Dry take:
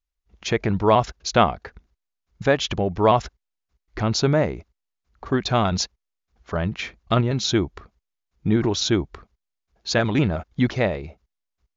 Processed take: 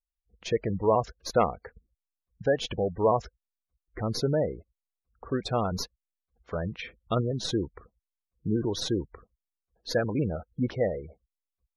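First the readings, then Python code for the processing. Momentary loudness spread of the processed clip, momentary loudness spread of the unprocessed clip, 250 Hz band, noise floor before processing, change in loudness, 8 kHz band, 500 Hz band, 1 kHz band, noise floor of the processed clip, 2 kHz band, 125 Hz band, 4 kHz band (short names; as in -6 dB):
13 LU, 14 LU, -8.0 dB, -82 dBFS, -7.0 dB, n/a, -4.5 dB, -8.0 dB, under -85 dBFS, -11.0 dB, -8.0 dB, -9.5 dB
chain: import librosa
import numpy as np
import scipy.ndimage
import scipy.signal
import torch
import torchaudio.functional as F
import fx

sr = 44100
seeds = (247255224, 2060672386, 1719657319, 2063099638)

y = fx.tracing_dist(x, sr, depth_ms=0.05)
y = fx.peak_eq(y, sr, hz=490.0, db=9.0, octaves=0.26)
y = fx.spec_gate(y, sr, threshold_db=-20, keep='strong')
y = F.gain(torch.from_numpy(y), -8.0).numpy()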